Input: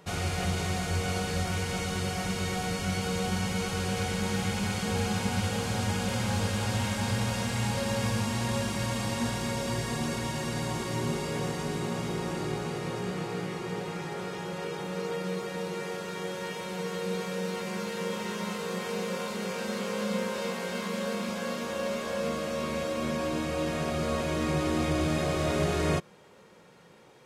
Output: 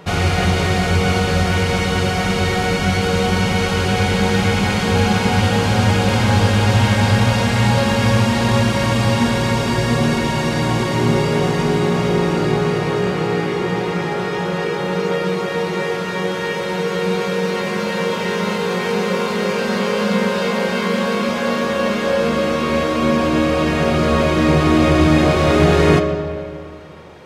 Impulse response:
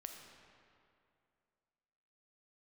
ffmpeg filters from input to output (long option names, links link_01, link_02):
-filter_complex "[0:a]asplit=2[link_01][link_02];[1:a]atrim=start_sample=2205,lowpass=5300[link_03];[link_02][link_03]afir=irnorm=-1:irlink=0,volume=7.5dB[link_04];[link_01][link_04]amix=inputs=2:normalize=0,volume=7dB"